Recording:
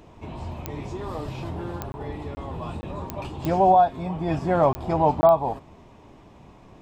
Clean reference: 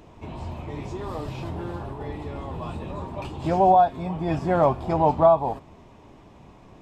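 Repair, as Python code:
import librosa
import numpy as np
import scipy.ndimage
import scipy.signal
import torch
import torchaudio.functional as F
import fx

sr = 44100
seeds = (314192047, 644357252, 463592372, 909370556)

y = fx.fix_declick_ar(x, sr, threshold=10.0)
y = fx.fix_interpolate(y, sr, at_s=(1.92, 2.35, 2.81, 4.73, 5.21), length_ms=20.0)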